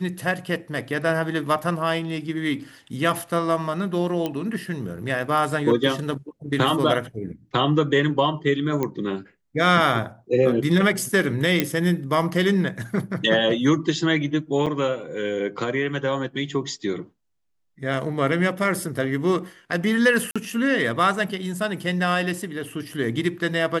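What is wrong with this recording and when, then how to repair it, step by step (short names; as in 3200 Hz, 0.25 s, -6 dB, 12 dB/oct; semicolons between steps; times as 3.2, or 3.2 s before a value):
4.26 pop -13 dBFS
8.83 pop -12 dBFS
11.6 pop -4 dBFS
14.66–14.67 gap 6 ms
20.31–20.36 gap 46 ms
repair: de-click; interpolate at 14.66, 6 ms; interpolate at 20.31, 46 ms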